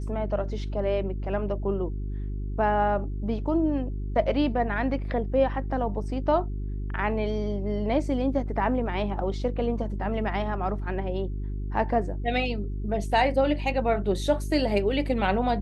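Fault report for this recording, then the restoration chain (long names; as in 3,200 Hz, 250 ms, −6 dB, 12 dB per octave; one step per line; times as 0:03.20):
mains hum 50 Hz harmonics 8 −31 dBFS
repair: hum removal 50 Hz, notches 8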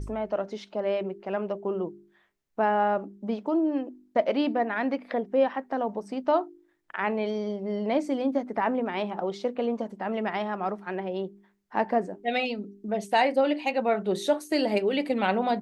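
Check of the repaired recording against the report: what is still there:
none of them is left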